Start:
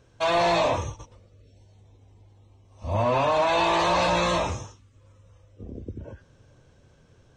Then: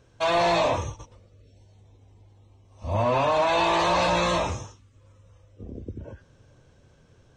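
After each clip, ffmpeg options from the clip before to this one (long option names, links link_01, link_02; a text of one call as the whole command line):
ffmpeg -i in.wav -af anull out.wav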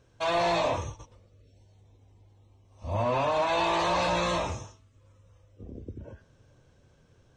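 ffmpeg -i in.wav -af "bandreject=frequency=216.8:width_type=h:width=4,bandreject=frequency=433.6:width_type=h:width=4,bandreject=frequency=650.4:width_type=h:width=4,bandreject=frequency=867.2:width_type=h:width=4,bandreject=frequency=1084:width_type=h:width=4,bandreject=frequency=1300.8:width_type=h:width=4,bandreject=frequency=1517.6:width_type=h:width=4,bandreject=frequency=1734.4:width_type=h:width=4,bandreject=frequency=1951.2:width_type=h:width=4,bandreject=frequency=2168:width_type=h:width=4,bandreject=frequency=2384.8:width_type=h:width=4,bandreject=frequency=2601.6:width_type=h:width=4,bandreject=frequency=2818.4:width_type=h:width=4,bandreject=frequency=3035.2:width_type=h:width=4,bandreject=frequency=3252:width_type=h:width=4,bandreject=frequency=3468.8:width_type=h:width=4,bandreject=frequency=3685.6:width_type=h:width=4,bandreject=frequency=3902.4:width_type=h:width=4,bandreject=frequency=4119.2:width_type=h:width=4,bandreject=frequency=4336:width_type=h:width=4,volume=-4dB" out.wav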